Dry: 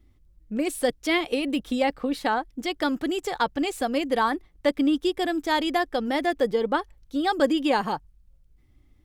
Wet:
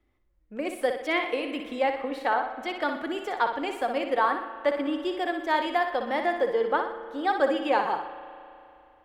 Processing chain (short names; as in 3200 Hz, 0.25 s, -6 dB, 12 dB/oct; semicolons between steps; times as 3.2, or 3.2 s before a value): three-band isolator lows -15 dB, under 390 Hz, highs -13 dB, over 2700 Hz; flutter echo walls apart 10.5 m, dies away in 0.5 s; on a send at -12 dB: reverb RT60 2.8 s, pre-delay 35 ms